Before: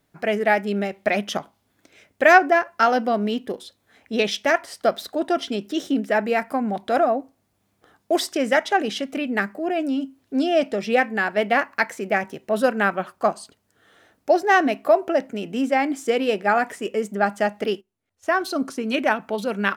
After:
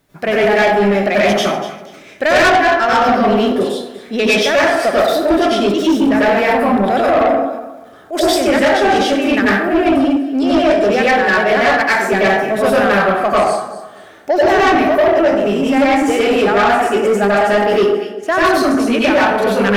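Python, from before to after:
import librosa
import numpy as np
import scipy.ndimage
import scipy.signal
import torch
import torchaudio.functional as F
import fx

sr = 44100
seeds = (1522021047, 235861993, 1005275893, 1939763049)

p1 = x + fx.echo_alternate(x, sr, ms=121, hz=1000.0, feedback_pct=51, wet_db=-9.5, dry=0)
p2 = fx.rev_plate(p1, sr, seeds[0], rt60_s=0.64, hf_ratio=0.6, predelay_ms=80, drr_db=-8.5)
p3 = fx.transient(p2, sr, attack_db=-11, sustain_db=4, at=(7.0, 8.19), fade=0.02)
p4 = fx.rider(p3, sr, range_db=10, speed_s=0.5)
p5 = p3 + F.gain(torch.from_numpy(p4), 1.0).numpy()
p6 = 10.0 ** (-4.5 / 20.0) * np.tanh(p5 / 10.0 ** (-4.5 / 20.0))
y = F.gain(torch.from_numpy(p6), -3.0).numpy()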